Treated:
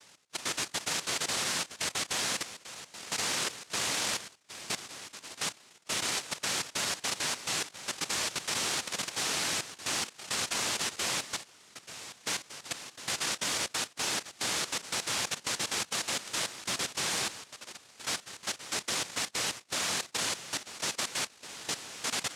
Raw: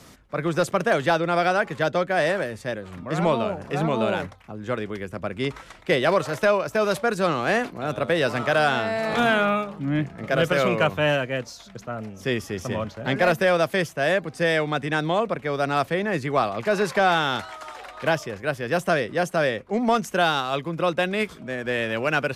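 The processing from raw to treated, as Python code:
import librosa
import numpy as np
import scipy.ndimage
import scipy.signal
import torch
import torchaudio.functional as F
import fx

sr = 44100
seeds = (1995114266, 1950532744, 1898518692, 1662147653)

y = fx.dynamic_eq(x, sr, hz=2600.0, q=0.81, threshold_db=-37.0, ratio=4.0, max_db=-5)
y = fx.noise_vocoder(y, sr, seeds[0], bands=1)
y = fx.level_steps(y, sr, step_db=13)
y = y * 10.0 ** (-5.5 / 20.0)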